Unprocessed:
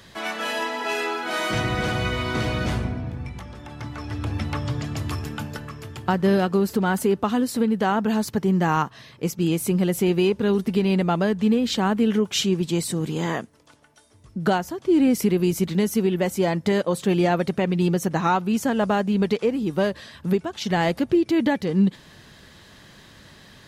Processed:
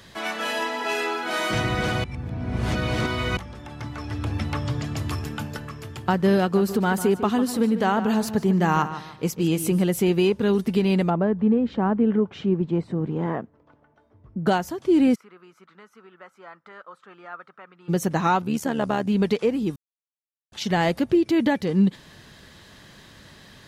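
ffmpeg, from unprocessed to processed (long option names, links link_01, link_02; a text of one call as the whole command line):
ffmpeg -i in.wav -filter_complex "[0:a]asettb=1/sr,asplit=3[link_01][link_02][link_03];[link_01]atrim=end=6.414[link_04];[link_02]atrim=start=6.41:end=9.83,asetpts=PTS-STARTPTS,afade=type=in:duration=0.004:curve=qsin,afade=type=out:start_time=3.416:duration=0.004:curve=qsin,asplit=2[link_05][link_06];[link_06]adelay=149,lowpass=frequency=4100:poles=1,volume=-11.5dB,asplit=2[link_07][link_08];[link_08]adelay=149,lowpass=frequency=4100:poles=1,volume=0.34,asplit=2[link_09][link_10];[link_10]adelay=149,lowpass=frequency=4100:poles=1,volume=0.34,asplit=2[link_11][link_12];[link_12]adelay=149,lowpass=frequency=4100:poles=1,volume=0.34[link_13];[link_05][link_07][link_09][link_11][link_13]amix=inputs=5:normalize=0,atrim=end_sample=150822[link_14];[link_03]atrim=start=9.826[link_15];[link_04][link_14]acrossfade=duration=0.004:curve1=hsin:curve2=qsin[link_16];[link_16][link_15]acrossfade=duration=0.004:curve1=qsin:curve2=hsin,asplit=3[link_17][link_18][link_19];[link_17]afade=type=out:start_time=11.09:duration=0.02[link_20];[link_18]lowpass=1200,afade=type=in:start_time=11.09:duration=0.02,afade=type=out:start_time=14.46:duration=0.02[link_21];[link_19]afade=type=in:start_time=14.46:duration=0.02[link_22];[link_20][link_21][link_22]amix=inputs=3:normalize=0,asplit=3[link_23][link_24][link_25];[link_23]afade=type=out:start_time=15.14:duration=0.02[link_26];[link_24]bandpass=frequency=1300:width_type=q:width=8,afade=type=in:start_time=15.14:duration=0.02,afade=type=out:start_time=17.88:duration=0.02[link_27];[link_25]afade=type=in:start_time=17.88:duration=0.02[link_28];[link_26][link_27][link_28]amix=inputs=3:normalize=0,asettb=1/sr,asplit=3[link_29][link_30][link_31];[link_29]atrim=end=18.424[link_32];[link_30]atrim=start=18.42:end=19.07,asetpts=PTS-STARTPTS,afade=type=in:duration=0.004:curve=qsin,afade=type=out:start_time=0.646:duration=0.004:curve=qsin,tremolo=f=74:d=0.667[link_33];[link_31]atrim=start=19.066[link_34];[link_32][link_33]acrossfade=duration=0.004:curve1=hsin:curve2=qsin[link_35];[link_35][link_34]acrossfade=duration=0.004:curve1=qsin:curve2=hsin,asplit=5[link_36][link_37][link_38][link_39][link_40];[link_36]atrim=end=2.042[link_41];[link_37]atrim=start=2.038:end=3.372,asetpts=PTS-STARTPTS,areverse[link_42];[link_38]atrim=start=3.368:end=19.76,asetpts=PTS-STARTPTS,afade=type=out:start_time=16.388:duration=0.004:curve=hsin[link_43];[link_39]atrim=start=19.76:end=20.52,asetpts=PTS-STARTPTS,volume=0[link_44];[link_40]atrim=start=20.52,asetpts=PTS-STARTPTS,afade=type=in:duration=0.004:curve=hsin[link_45];[link_41][link_42]acrossfade=duration=0.004:curve1=hsin:curve2=hsin[link_46];[link_43][link_44][link_45]concat=n=3:v=0:a=1[link_47];[link_46][link_47]acrossfade=duration=0.004:curve1=hsin:curve2=hsin" out.wav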